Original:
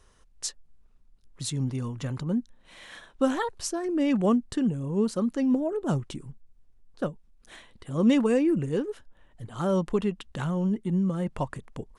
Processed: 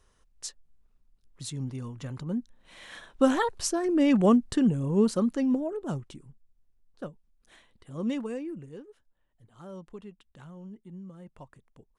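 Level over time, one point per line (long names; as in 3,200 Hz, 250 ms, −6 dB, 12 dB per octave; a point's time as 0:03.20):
0:02.10 −5.5 dB
0:03.28 +2.5 dB
0:05.08 +2.5 dB
0:06.21 −9 dB
0:08.07 −9 dB
0:08.90 −18 dB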